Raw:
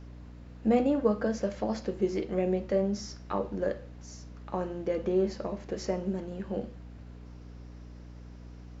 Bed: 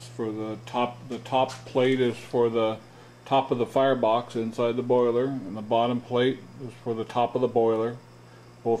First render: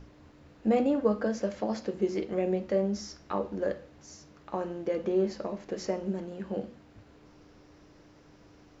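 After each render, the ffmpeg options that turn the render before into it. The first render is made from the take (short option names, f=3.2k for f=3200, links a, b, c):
-af "bandreject=f=60:t=h:w=6,bandreject=f=120:t=h:w=6,bandreject=f=180:t=h:w=6,bandreject=f=240:t=h:w=6"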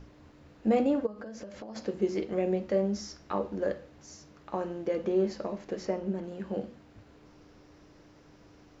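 -filter_complex "[0:a]asplit=3[a][b][c];[a]afade=t=out:st=1.05:d=0.02[d];[b]acompressor=threshold=-38dB:ratio=16:attack=3.2:release=140:knee=1:detection=peak,afade=t=in:st=1.05:d=0.02,afade=t=out:st=1.75:d=0.02[e];[c]afade=t=in:st=1.75:d=0.02[f];[d][e][f]amix=inputs=3:normalize=0,asettb=1/sr,asplit=3[g][h][i];[g]atrim=end=5.764[j];[h]atrim=start=5.76:end=6.24,asetpts=PTS-STARTPTS,afade=t=in:d=0.004:c=qsin,afade=t=out:st=0.476:d=0.004:c=qsin,lowpass=f=3.6k:p=1[k];[i]atrim=start=6.236[l];[j][k]acrossfade=d=0.004:c1=hsin:c2=qsin[m];[m][l]acrossfade=d=0.004:c1=qsin:c2=hsin"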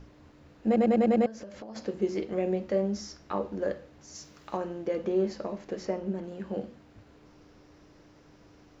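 -filter_complex "[0:a]asplit=3[a][b][c];[a]afade=t=out:st=4.14:d=0.02[d];[b]highshelf=f=2.6k:g=11,afade=t=in:st=4.14:d=0.02,afade=t=out:st=4.56:d=0.02[e];[c]afade=t=in:st=4.56:d=0.02[f];[d][e][f]amix=inputs=3:normalize=0,asplit=7[g][h][i][j][k][l][m];[g]atrim=end=0.762[n];[h]atrim=start=0.658:end=0.762[o];[i]atrim=start=0.658:end=0.762[p];[j]atrim=start=0.658:end=0.762[q];[k]atrim=start=0.658:end=0.762[r];[l]atrim=start=0.658:end=0.762[s];[m]atrim=start=1.258[t];[n][o]acrossfade=d=0.004:c1=hsin:c2=hsin[u];[u][p]acrossfade=d=0.004:c1=hsin:c2=hsin[v];[v][q]acrossfade=d=0.004:c1=hsin:c2=hsin[w];[w][r]acrossfade=d=0.004:c1=hsin:c2=hsin[x];[x][s]acrossfade=d=0.004:c1=hsin:c2=hsin[y];[y][t]acrossfade=d=0.004:c1=hsin:c2=hsin"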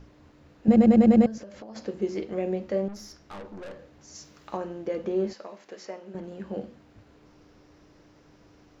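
-filter_complex "[0:a]asettb=1/sr,asplit=3[a][b][c];[a]atrim=end=0.684[d];[b]atrim=start=0.68:end=1.38,asetpts=PTS-STARTPTS,afade=t=in:d=0.004:c=qsin,afade=t=out:st=0.696:d=0.004:c=qsin,bass=f=250:g=14,treble=f=4k:g=5[e];[c]atrim=start=1.376[f];[d][e]acrossfade=d=0.004:c1=hsin:c2=qsin[g];[g][f]acrossfade=d=0.004:c1=qsin:c2=hsin,asettb=1/sr,asplit=3[h][i][j];[h]atrim=end=2.884[k];[i]atrim=start=2.88:end=3.79,asetpts=PTS-STARTPTS,afade=t=in:d=0.004:c=qsin,afade=t=out:st=0.906:d=0.004:c=qsin,aeval=exprs='(tanh(79.4*val(0)+0.4)-tanh(0.4))/79.4':c=same[l];[j]atrim=start=3.786[m];[k][l]acrossfade=d=0.004:c1=hsin:c2=qsin[n];[n][m]acrossfade=d=0.004:c1=qsin:c2=hsin,asettb=1/sr,asplit=3[o][p][q];[o]atrim=end=5.334[r];[p]atrim=start=5.33:end=6.15,asetpts=PTS-STARTPTS,afade=t=in:d=0.004:c=qsin,afade=t=out:st=0.816:d=0.004:c=qsin,highpass=f=1k:p=1[s];[q]atrim=start=6.146[t];[r][s]acrossfade=d=0.004:c1=hsin:c2=qsin[u];[u][t]acrossfade=d=0.004:c1=qsin:c2=hsin"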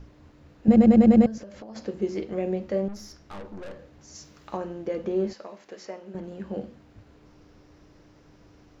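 -af "lowshelf=f=130:g=6"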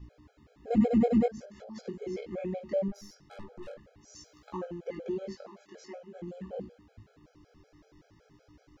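-af "flanger=delay=16.5:depth=4.3:speed=0.46,afftfilt=real='re*gt(sin(2*PI*5.3*pts/sr)*(1-2*mod(floor(b*sr/1024/430),2)),0)':imag='im*gt(sin(2*PI*5.3*pts/sr)*(1-2*mod(floor(b*sr/1024/430),2)),0)':win_size=1024:overlap=0.75"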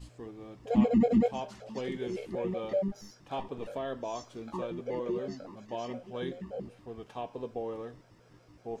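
-filter_complex "[1:a]volume=-14.5dB[a];[0:a][a]amix=inputs=2:normalize=0"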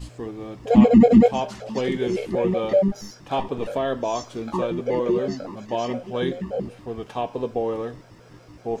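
-af "volume=11.5dB,alimiter=limit=-3dB:level=0:latency=1"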